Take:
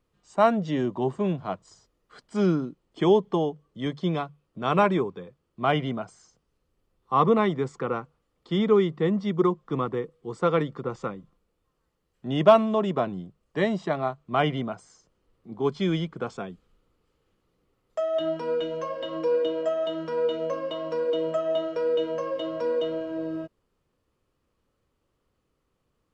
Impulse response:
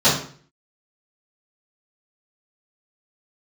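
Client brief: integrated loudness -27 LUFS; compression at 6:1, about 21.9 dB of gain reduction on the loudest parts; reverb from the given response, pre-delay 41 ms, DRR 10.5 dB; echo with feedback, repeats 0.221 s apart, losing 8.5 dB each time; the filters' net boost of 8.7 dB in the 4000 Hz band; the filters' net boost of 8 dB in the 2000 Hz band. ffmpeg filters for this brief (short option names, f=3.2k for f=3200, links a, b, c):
-filter_complex "[0:a]equalizer=f=2k:t=o:g=8.5,equalizer=f=4k:t=o:g=8,acompressor=threshold=-33dB:ratio=6,aecho=1:1:221|442|663|884:0.376|0.143|0.0543|0.0206,asplit=2[a][b];[1:a]atrim=start_sample=2205,adelay=41[c];[b][c]afir=irnorm=-1:irlink=0,volume=-32dB[d];[a][d]amix=inputs=2:normalize=0,volume=9dB"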